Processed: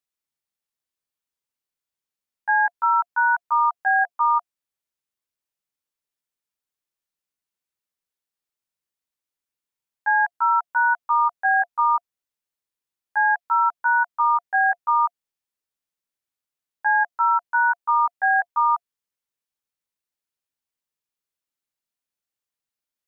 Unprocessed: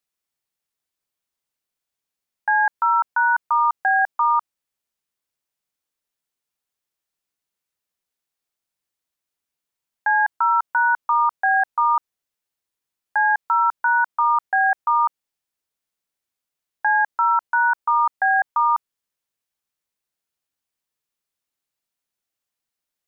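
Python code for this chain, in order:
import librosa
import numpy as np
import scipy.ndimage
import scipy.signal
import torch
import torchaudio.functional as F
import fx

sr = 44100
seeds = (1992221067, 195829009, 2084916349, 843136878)

y = fx.notch(x, sr, hz=700.0, q=16.0)
y = fx.level_steps(y, sr, step_db=9)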